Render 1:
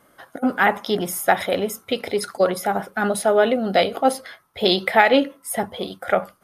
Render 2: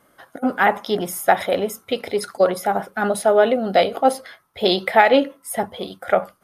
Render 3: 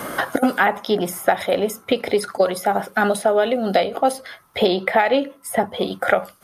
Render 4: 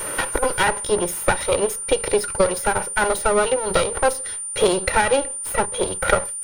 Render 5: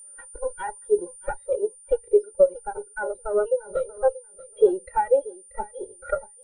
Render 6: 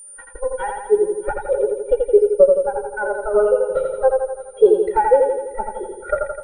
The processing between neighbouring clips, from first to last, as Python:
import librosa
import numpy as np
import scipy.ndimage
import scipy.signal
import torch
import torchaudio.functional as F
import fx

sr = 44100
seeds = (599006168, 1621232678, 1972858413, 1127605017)

y1 = fx.dynamic_eq(x, sr, hz=660.0, q=0.8, threshold_db=-26.0, ratio=4.0, max_db=4)
y1 = F.gain(torch.from_numpy(y1), -1.5).numpy()
y2 = fx.band_squash(y1, sr, depth_pct=100)
y2 = F.gain(torch.from_numpy(y2), -1.0).numpy()
y3 = fx.lower_of_two(y2, sr, delay_ms=2.1)
y3 = y3 + 10.0 ** (-27.0 / 20.0) * np.sin(2.0 * np.pi * 9200.0 * np.arange(len(y3)) / sr)
y4 = fx.echo_feedback(y3, sr, ms=634, feedback_pct=40, wet_db=-8)
y4 = fx.spectral_expand(y4, sr, expansion=2.5)
y4 = F.gain(torch.from_numpy(y4), -5.0).numpy()
y5 = fx.echo_feedback(y4, sr, ms=84, feedback_pct=58, wet_db=-4)
y5 = F.gain(torch.from_numpy(y5), 5.0).numpy()